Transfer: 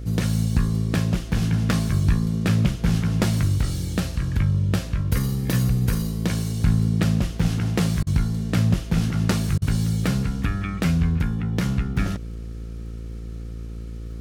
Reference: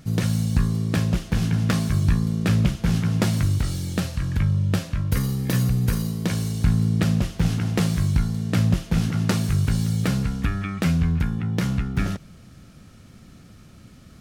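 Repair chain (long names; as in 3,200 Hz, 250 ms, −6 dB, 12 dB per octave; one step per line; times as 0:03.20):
click removal
hum removal 56.5 Hz, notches 9
repair the gap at 0:08.03/0:09.58, 37 ms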